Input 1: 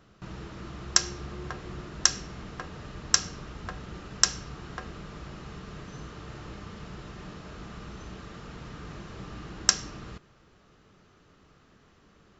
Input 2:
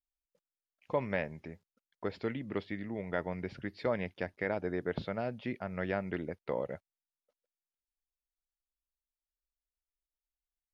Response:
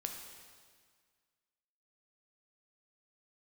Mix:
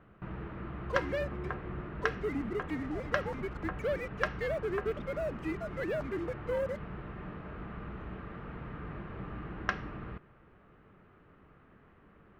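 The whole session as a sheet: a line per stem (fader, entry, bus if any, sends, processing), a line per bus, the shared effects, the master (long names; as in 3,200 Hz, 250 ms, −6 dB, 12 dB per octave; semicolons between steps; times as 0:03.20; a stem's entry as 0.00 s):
0.0 dB, 0.00 s, no send, low-pass filter 2,300 Hz 24 dB per octave
−8.5 dB, 0.00 s, no send, three sine waves on the formant tracks; leveller curve on the samples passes 3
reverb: not used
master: no processing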